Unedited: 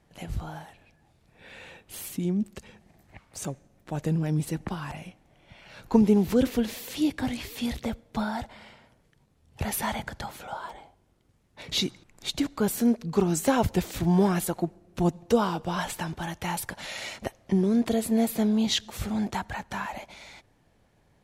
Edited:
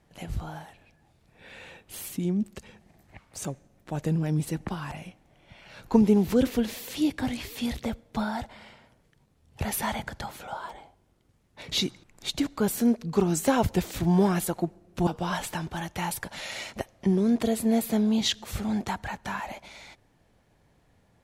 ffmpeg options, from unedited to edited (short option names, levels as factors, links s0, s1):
-filter_complex "[0:a]asplit=2[s0][s1];[s0]atrim=end=15.072[s2];[s1]atrim=start=15.528[s3];[s2][s3]acrossfade=d=0.004:c1=hsin:c2=hsin"